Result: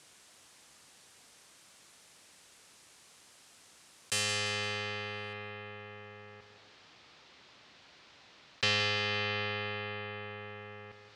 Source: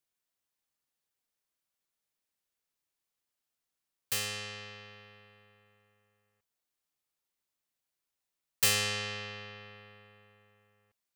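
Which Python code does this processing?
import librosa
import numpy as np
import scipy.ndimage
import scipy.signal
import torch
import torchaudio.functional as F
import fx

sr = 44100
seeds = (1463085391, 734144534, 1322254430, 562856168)

y = fx.lowpass(x, sr, hz=fx.steps((0.0, 9700.0), (5.33, 4600.0)), slope=24)
y = fx.rider(y, sr, range_db=4, speed_s=0.5)
y = scipy.signal.sosfilt(scipy.signal.butter(2, 69.0, 'highpass', fs=sr, output='sos'), y)
y = fx.echo_feedback(y, sr, ms=171, feedback_pct=35, wet_db=-15.0)
y = fx.env_flatten(y, sr, amount_pct=50)
y = y * 10.0 ** (-1.0 / 20.0)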